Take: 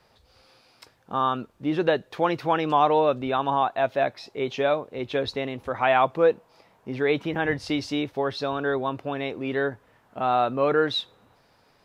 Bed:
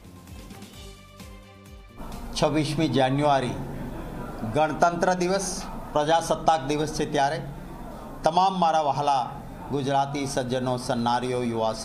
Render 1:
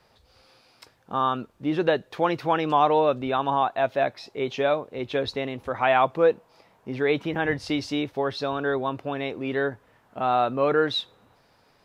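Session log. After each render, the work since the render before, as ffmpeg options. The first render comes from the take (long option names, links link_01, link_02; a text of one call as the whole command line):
ffmpeg -i in.wav -af anull out.wav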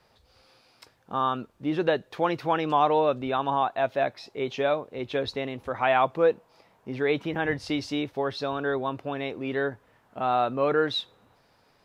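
ffmpeg -i in.wav -af "volume=-2dB" out.wav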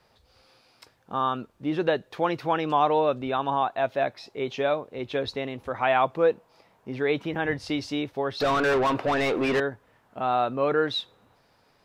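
ffmpeg -i in.wav -filter_complex "[0:a]asettb=1/sr,asplit=3[link_01][link_02][link_03];[link_01]atrim=end=8.404[link_04];[link_02]atrim=start=8.4:end=9.6,asetpts=PTS-STARTPTS,afade=type=in:duration=0.004:curve=qsin,afade=type=out:start_time=1.196:duration=0.004:curve=qsin,asplit=2[link_05][link_06];[link_06]highpass=frequency=720:poles=1,volume=28dB,asoftclip=type=tanh:threshold=-15.5dB[link_07];[link_05][link_07]amix=inputs=2:normalize=0,lowpass=frequency=2100:poles=1,volume=-6dB[link_08];[link_03]atrim=start=9.596[link_09];[link_04][link_08]acrossfade=duration=0.004:curve1=hsin:curve2=qsin[link_10];[link_10][link_09]acrossfade=duration=0.004:curve1=qsin:curve2=hsin" out.wav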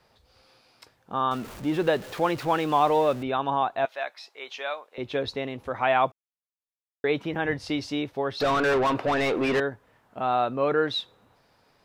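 ffmpeg -i in.wav -filter_complex "[0:a]asettb=1/sr,asplit=3[link_01][link_02][link_03];[link_01]atrim=end=1.314[link_04];[link_02]atrim=start=1.31:end=3.23,asetpts=PTS-STARTPTS,afade=type=in:duration=0.004:curve=qsin,afade=type=out:start_time=1.916:duration=0.004:curve=qsin,aeval=exprs='val(0)+0.5*0.015*sgn(val(0))':channel_layout=same[link_05];[link_03]atrim=start=3.226[link_06];[link_04][link_05]acrossfade=duration=0.004:curve1=hsin:curve2=qsin[link_07];[link_07][link_06]acrossfade=duration=0.004:curve1=qsin:curve2=hsin,asettb=1/sr,asplit=3[link_08][link_09][link_10];[link_08]atrim=end=3.854[link_11];[link_09]atrim=start=3.85:end=4.98,asetpts=PTS-STARTPTS,afade=type=in:duration=0.004:curve=qsin,afade=type=out:start_time=1.126:duration=0.004:curve=qsin,highpass=970[link_12];[link_10]atrim=start=4.976[link_13];[link_11][link_12]acrossfade=duration=0.004:curve1=hsin:curve2=qsin[link_14];[link_14][link_13]acrossfade=duration=0.004:curve1=qsin:curve2=hsin,asplit=3[link_15][link_16][link_17];[link_15]atrim=end=6.12,asetpts=PTS-STARTPTS,afade=type=out:start_time=6.116:duration=0.004:curve=hsin[link_18];[link_16]atrim=start=6.12:end=7.04,asetpts=PTS-STARTPTS,volume=0[link_19];[link_17]atrim=start=7.04,asetpts=PTS-STARTPTS,afade=type=in:duration=0.004:curve=hsin[link_20];[link_18][link_19][link_20]concat=n=3:v=0:a=1" out.wav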